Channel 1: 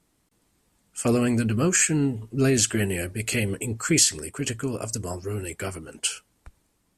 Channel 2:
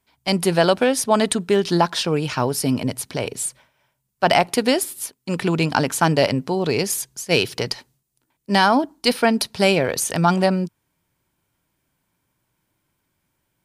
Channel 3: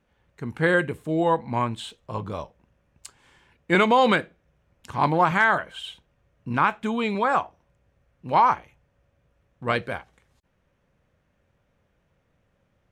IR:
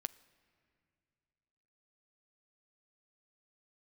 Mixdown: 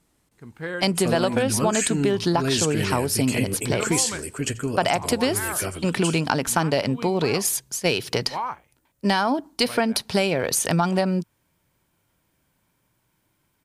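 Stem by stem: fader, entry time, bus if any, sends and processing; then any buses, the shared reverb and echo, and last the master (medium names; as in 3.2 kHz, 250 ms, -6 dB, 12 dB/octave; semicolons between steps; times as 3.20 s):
+1.5 dB, 0.00 s, no send, echo send -20.5 dB, none
+2.5 dB, 0.55 s, no send, no echo send, none
-10.5 dB, 0.00 s, no send, no echo send, none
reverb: none
echo: feedback delay 87 ms, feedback 24%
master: compression 5:1, threshold -18 dBFS, peak gain reduction 9.5 dB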